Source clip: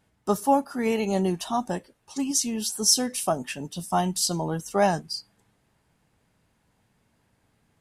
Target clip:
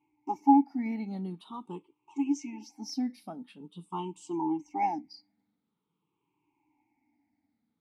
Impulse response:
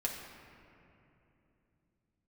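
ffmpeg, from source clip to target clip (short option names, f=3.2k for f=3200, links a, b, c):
-filter_complex "[0:a]afftfilt=real='re*pow(10,19/40*sin(2*PI*(0.69*log(max(b,1)*sr/1024/100)/log(2)-(-0.46)*(pts-256)/sr)))':imag='im*pow(10,19/40*sin(2*PI*(0.69*log(max(b,1)*sr/1024/100)/log(2)-(-0.46)*(pts-256)/sr)))':win_size=1024:overlap=0.75,asplit=3[a][b][c];[a]bandpass=f=300:t=q:w=8,volume=0dB[d];[b]bandpass=f=870:t=q:w=8,volume=-6dB[e];[c]bandpass=f=2.24k:t=q:w=8,volume=-9dB[f];[d][e][f]amix=inputs=3:normalize=0"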